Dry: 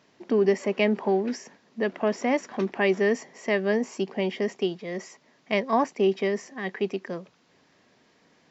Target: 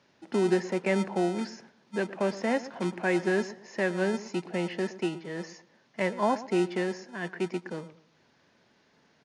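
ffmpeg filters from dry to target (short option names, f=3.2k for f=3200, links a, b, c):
-filter_complex "[0:a]acrossover=split=300|3100[a][b][c];[a]acrusher=samples=36:mix=1:aa=0.000001[d];[c]aeval=exprs='0.0112*(abs(mod(val(0)/0.0112+3,4)-2)-1)':c=same[e];[d][b][e]amix=inputs=3:normalize=0,asetrate=40572,aresample=44100,aresample=22050,aresample=44100,asplit=2[f][g];[g]adelay=117,lowpass=f=1.4k:p=1,volume=-15dB,asplit=2[h][i];[i]adelay=117,lowpass=f=1.4k:p=1,volume=0.29,asplit=2[j][k];[k]adelay=117,lowpass=f=1.4k:p=1,volume=0.29[l];[f][h][j][l]amix=inputs=4:normalize=0,volume=-3dB"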